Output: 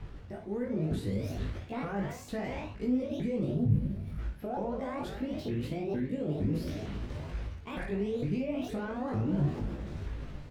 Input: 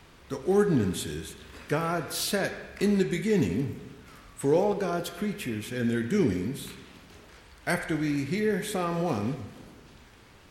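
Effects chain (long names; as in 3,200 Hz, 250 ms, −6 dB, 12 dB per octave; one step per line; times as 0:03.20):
pitch shifter swept by a sawtooth +9.5 semitones, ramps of 457 ms
gain on a spectral selection 0:03.53–0:04.19, 240–8,900 Hz −11 dB
reversed playback
downward compressor 8 to 1, threshold −38 dBFS, peak gain reduction 19.5 dB
reversed playback
brickwall limiter −35.5 dBFS, peak gain reduction 8.5 dB
automatic gain control gain up to 6 dB
RIAA equalisation playback
ambience of single reflections 20 ms −3.5 dB, 56 ms −9 dB
level −2 dB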